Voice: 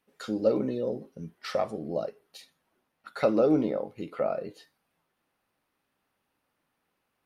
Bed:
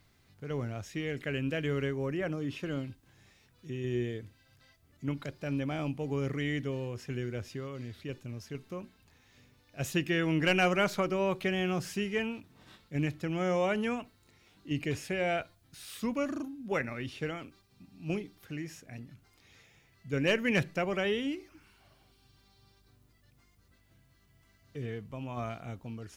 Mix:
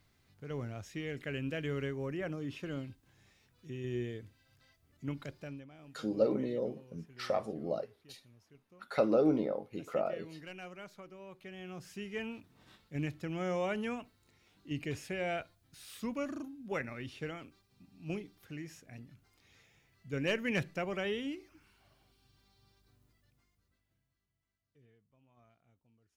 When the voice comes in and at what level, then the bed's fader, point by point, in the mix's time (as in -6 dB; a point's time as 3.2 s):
5.75 s, -4.5 dB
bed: 5.39 s -4.5 dB
5.69 s -21 dB
11.26 s -21 dB
12.35 s -5 dB
23.09 s -5 dB
24.98 s -29.5 dB